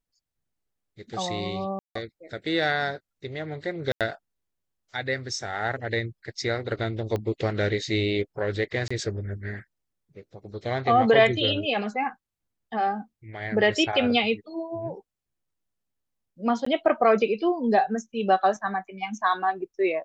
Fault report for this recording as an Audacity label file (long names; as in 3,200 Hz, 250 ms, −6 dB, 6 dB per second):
1.790000	1.950000	drop-out 164 ms
3.920000	4.010000	drop-out 87 ms
7.160000	7.160000	click −17 dBFS
8.880000	8.900000	drop-out 25 ms
16.650000	16.660000	drop-out 14 ms